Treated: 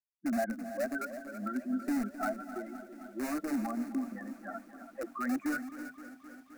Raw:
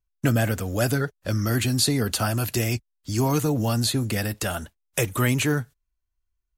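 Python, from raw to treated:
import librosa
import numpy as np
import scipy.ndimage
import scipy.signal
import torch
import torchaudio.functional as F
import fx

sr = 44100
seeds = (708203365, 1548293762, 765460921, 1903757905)

p1 = fx.bin_expand(x, sr, power=3.0)
p2 = fx.transient(p1, sr, attack_db=-6, sustain_db=8)
p3 = scipy.signal.sosfilt(scipy.signal.ellip(3, 1.0, 40, [230.0, 1400.0], 'bandpass', fs=sr, output='sos'), p2)
p4 = (np.mod(10.0 ** (28.5 / 20.0) * p3 + 1.0, 2.0) - 1.0) / 10.0 ** (28.5 / 20.0)
p5 = p3 + (p4 * 10.0 ** (-7.0 / 20.0))
p6 = fx.fixed_phaser(p5, sr, hz=650.0, stages=8)
p7 = p6 + fx.echo_single(p6, sr, ms=329, db=-11.5, dry=0)
y = fx.echo_crushed(p7, sr, ms=261, feedback_pct=80, bits=10, wet_db=-15.0)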